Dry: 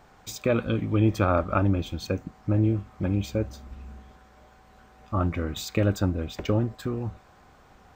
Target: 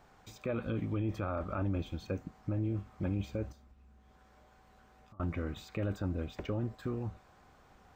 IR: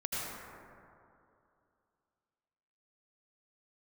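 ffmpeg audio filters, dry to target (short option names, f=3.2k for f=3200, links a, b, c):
-filter_complex "[0:a]acrossover=split=2700[a][b];[b]acompressor=threshold=-49dB:ratio=4:attack=1:release=60[c];[a][c]amix=inputs=2:normalize=0,alimiter=limit=-19.5dB:level=0:latency=1:release=17,asettb=1/sr,asplit=3[d][e][f];[d]atrim=end=3.524[g];[e]atrim=start=3.52:end=5.2,asetpts=PTS-STARTPTS,afade=t=in:d=0.004:c=qsin,afade=t=out:st=1.676:d=0.004:c=qsin,acompressor=threshold=-50dB:ratio=20[h];[f]atrim=start=5.196[i];[g][h]acrossfade=d=0.004:c1=hsin:c2=qsin[j];[j][i]acrossfade=d=0.004:c1=qsin:c2=hsin,volume=-6.5dB"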